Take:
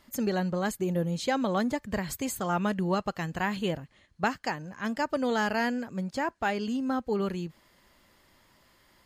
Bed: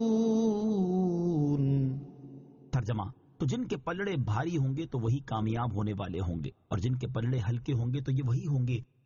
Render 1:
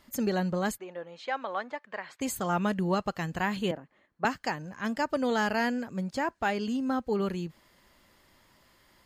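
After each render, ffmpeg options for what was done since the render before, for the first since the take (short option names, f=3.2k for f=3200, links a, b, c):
-filter_complex "[0:a]asplit=3[a][b][c];[a]afade=t=out:st=0.77:d=0.02[d];[b]highpass=730,lowpass=2.4k,afade=t=in:st=0.77:d=0.02,afade=t=out:st=2.2:d=0.02[e];[c]afade=t=in:st=2.2:d=0.02[f];[d][e][f]amix=inputs=3:normalize=0,asettb=1/sr,asplit=3[g][h][i];[g]atrim=end=3.714[j];[h]atrim=start=3.71:end=4.25,asetpts=PTS-STARTPTS,afade=t=in:d=0.004:c=qsin,afade=t=out:st=0.536:d=0.004:c=qsin,acrossover=split=200 2000:gain=0.126 1 0.158[k][l][m];[k][l][m]amix=inputs=3:normalize=0[n];[i]atrim=start=4.246[o];[j][n]acrossfade=d=0.004:c1=hsin:c2=qsin[p];[p][o]acrossfade=d=0.004:c1=qsin:c2=hsin"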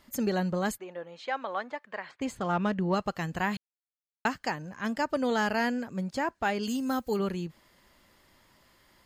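-filter_complex "[0:a]asettb=1/sr,asplit=3[a][b][c];[a]atrim=end=2.114[d];[b]atrim=start=2.11:end=2.94,asetpts=PTS-STARTPTS,afade=t=in:d=0.004:c=qsin,afade=t=out:st=0.826:d=0.004:c=qsin,adynamicsmooth=sensitivity=3.5:basefreq=3.5k[e];[c]atrim=start=2.936[f];[d][e]acrossfade=d=0.004:c1=hsin:c2=qsin[g];[g][f]acrossfade=d=0.004:c1=qsin:c2=hsin,asplit=3[h][i][j];[h]afade=t=out:st=6.62:d=0.02[k];[i]aemphasis=mode=production:type=75fm,afade=t=in:st=6.62:d=0.02,afade=t=out:st=7.18:d=0.02[l];[j]afade=t=in:st=7.18:d=0.02[m];[k][l][m]amix=inputs=3:normalize=0,asplit=3[n][o][p];[n]atrim=end=3.57,asetpts=PTS-STARTPTS,afade=t=out:st=3.566:d=0.004:c=hsin[q];[o]atrim=start=3.57:end=4.25,asetpts=PTS-STARTPTS,volume=0[r];[p]atrim=start=4.25,asetpts=PTS-STARTPTS,afade=t=in:d=0.004:c=hsin[s];[q][r][s]concat=n=3:v=0:a=1"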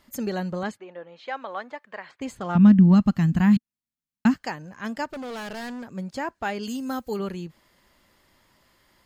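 -filter_complex "[0:a]asettb=1/sr,asplit=3[a][b][c];[a]atrim=end=0.634[d];[b]atrim=start=0.63:end=1.26,asetpts=PTS-STARTPTS,afade=t=in:d=0.004:c=qsin,afade=t=out:st=0.626:d=0.004:c=qsin,highpass=120,lowpass=4.3k[e];[c]atrim=start=1.256[f];[d][e]acrossfade=d=0.004:c1=hsin:c2=qsin[g];[g][f]acrossfade=d=0.004:c1=qsin:c2=hsin,asettb=1/sr,asplit=3[h][i][j];[h]atrim=end=2.554[k];[i]atrim=start=2.55:end=4.34,asetpts=PTS-STARTPTS,afade=t=in:d=0.004:c=qsin,afade=t=out:st=1.786:d=0.004:c=qsin,lowshelf=f=320:t=q:w=3:g=11[l];[j]atrim=start=4.336[m];[k][l]acrossfade=d=0.004:c1=hsin:c2=qsin[n];[n][m]acrossfade=d=0.004:c1=qsin:c2=hsin,asplit=3[o][p][q];[o]afade=t=out:st=5.04:d=0.02[r];[p]asoftclip=type=hard:threshold=-32.5dB,afade=t=in:st=5.04:d=0.02,afade=t=out:st=5.91:d=0.02[s];[q]afade=t=in:st=5.91:d=0.02[t];[r][s][t]amix=inputs=3:normalize=0"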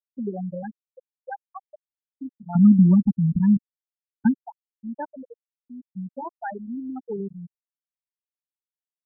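-af "afftfilt=real='re*gte(hypot(re,im),0.224)':imag='im*gte(hypot(re,im),0.224)':win_size=1024:overlap=0.75,adynamicequalizer=threshold=0.00631:dfrequency=1700:dqfactor=0.75:tfrequency=1700:tqfactor=0.75:attack=5:release=100:ratio=0.375:range=3:mode=cutabove:tftype=bell"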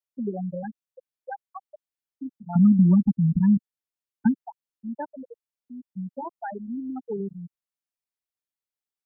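-filter_complex "[0:a]acrossover=split=190|730[a][b][c];[a]acompressor=threshold=-18dB:ratio=4[d];[b]acompressor=threshold=-20dB:ratio=4[e];[c]acompressor=threshold=-35dB:ratio=4[f];[d][e][f]amix=inputs=3:normalize=0"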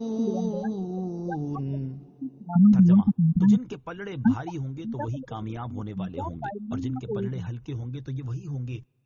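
-filter_complex "[1:a]volume=-3dB[a];[0:a][a]amix=inputs=2:normalize=0"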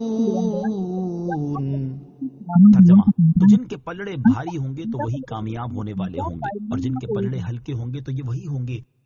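-af "volume=6dB"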